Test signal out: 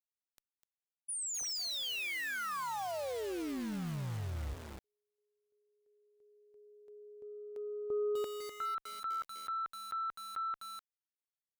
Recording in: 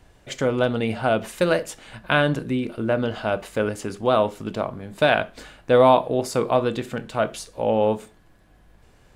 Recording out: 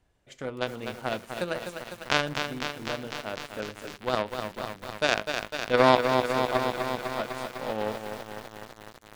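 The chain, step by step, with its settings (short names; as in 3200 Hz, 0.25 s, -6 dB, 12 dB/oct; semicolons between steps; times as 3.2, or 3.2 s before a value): added harmonics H 3 -11 dB, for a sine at -3.5 dBFS; lo-fi delay 0.251 s, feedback 80%, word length 7-bit, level -6 dB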